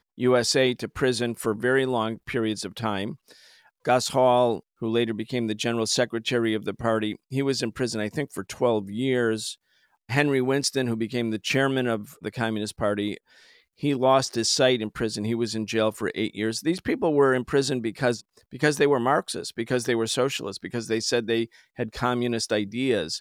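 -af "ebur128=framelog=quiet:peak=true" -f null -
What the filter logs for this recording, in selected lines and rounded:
Integrated loudness:
  I:         -25.2 LUFS
  Threshold: -35.4 LUFS
Loudness range:
  LRA:         2.5 LU
  Threshold: -45.5 LUFS
  LRA low:   -26.8 LUFS
  LRA high:  -24.3 LUFS
True peak:
  Peak:       -7.2 dBFS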